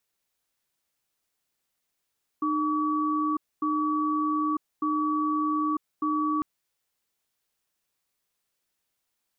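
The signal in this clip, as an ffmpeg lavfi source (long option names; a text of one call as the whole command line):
ffmpeg -f lavfi -i "aevalsrc='0.0501*(sin(2*PI*305*t)+sin(2*PI*1140*t))*clip(min(mod(t,1.2),0.95-mod(t,1.2))/0.005,0,1)':duration=4:sample_rate=44100" out.wav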